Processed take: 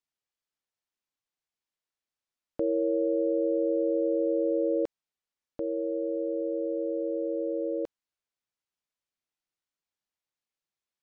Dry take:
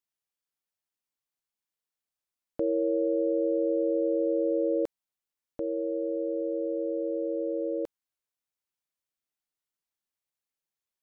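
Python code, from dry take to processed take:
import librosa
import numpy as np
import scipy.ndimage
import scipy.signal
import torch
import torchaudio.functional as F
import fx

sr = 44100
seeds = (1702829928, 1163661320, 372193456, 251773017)

y = scipy.signal.sosfilt(scipy.signal.butter(2, 6800.0, 'lowpass', fs=sr, output='sos'), x)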